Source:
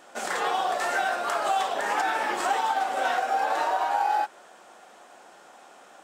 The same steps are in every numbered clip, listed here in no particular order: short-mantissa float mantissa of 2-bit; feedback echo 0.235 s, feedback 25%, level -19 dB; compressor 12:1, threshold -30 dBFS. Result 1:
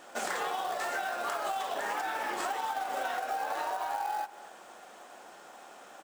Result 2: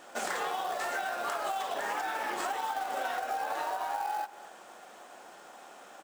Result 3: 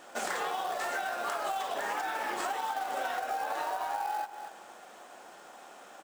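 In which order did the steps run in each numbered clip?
compressor > short-mantissa float > feedback echo; compressor > feedback echo > short-mantissa float; feedback echo > compressor > short-mantissa float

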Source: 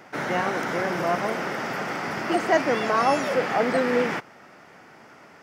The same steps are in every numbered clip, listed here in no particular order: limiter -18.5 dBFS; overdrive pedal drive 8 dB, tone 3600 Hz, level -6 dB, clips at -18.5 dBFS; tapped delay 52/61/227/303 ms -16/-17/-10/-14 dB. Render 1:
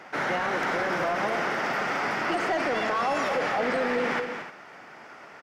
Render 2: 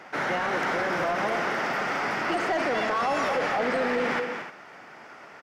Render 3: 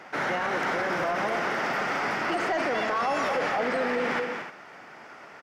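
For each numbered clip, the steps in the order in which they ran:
overdrive pedal > tapped delay > limiter; tapped delay > overdrive pedal > limiter; tapped delay > limiter > overdrive pedal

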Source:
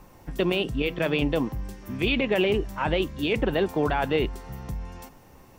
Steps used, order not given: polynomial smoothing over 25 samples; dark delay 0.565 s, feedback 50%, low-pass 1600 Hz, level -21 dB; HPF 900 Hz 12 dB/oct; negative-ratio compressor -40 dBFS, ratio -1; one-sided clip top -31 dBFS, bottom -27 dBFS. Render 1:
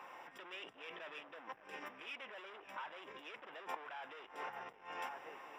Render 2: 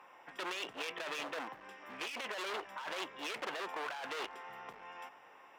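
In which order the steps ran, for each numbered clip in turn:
dark delay > one-sided clip > polynomial smoothing > negative-ratio compressor > HPF; polynomial smoothing > one-sided clip > HPF > negative-ratio compressor > dark delay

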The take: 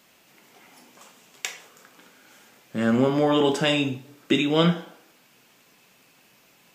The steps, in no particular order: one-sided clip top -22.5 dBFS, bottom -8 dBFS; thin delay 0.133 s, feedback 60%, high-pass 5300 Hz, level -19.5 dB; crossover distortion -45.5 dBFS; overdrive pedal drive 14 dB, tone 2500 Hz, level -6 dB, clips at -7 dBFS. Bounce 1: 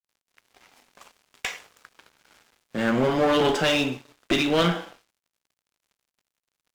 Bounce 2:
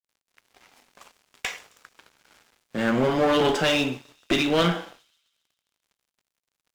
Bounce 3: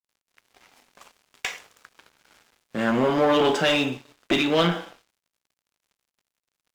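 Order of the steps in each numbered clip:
overdrive pedal > one-sided clip > thin delay > crossover distortion; overdrive pedal > one-sided clip > crossover distortion > thin delay; thin delay > one-sided clip > overdrive pedal > crossover distortion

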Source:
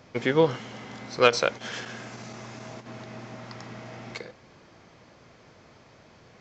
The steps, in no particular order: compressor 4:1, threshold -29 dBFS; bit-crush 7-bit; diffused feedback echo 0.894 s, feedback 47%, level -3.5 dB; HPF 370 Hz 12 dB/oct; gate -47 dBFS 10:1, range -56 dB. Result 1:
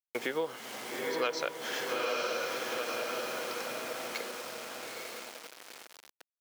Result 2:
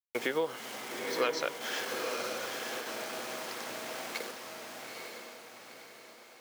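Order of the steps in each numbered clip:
gate > diffused feedback echo > bit-crush > compressor > HPF; gate > bit-crush > HPF > compressor > diffused feedback echo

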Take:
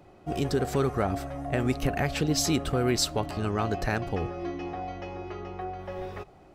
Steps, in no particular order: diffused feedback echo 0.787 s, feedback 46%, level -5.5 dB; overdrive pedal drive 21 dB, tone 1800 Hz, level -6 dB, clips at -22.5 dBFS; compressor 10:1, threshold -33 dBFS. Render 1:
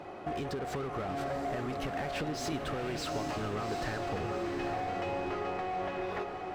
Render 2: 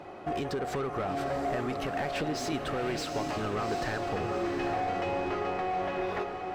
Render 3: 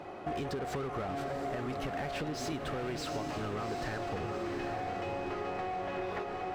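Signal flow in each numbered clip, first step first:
overdrive pedal > compressor > diffused feedback echo; compressor > overdrive pedal > diffused feedback echo; overdrive pedal > diffused feedback echo > compressor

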